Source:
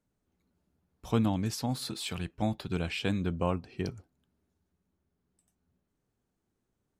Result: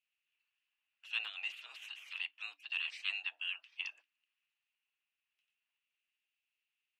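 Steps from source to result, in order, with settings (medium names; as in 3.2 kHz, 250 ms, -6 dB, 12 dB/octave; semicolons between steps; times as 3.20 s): spectral gate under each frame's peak -20 dB weak; frequency shift +290 Hz; band-pass filter 2.7 kHz, Q 9.3; trim +15.5 dB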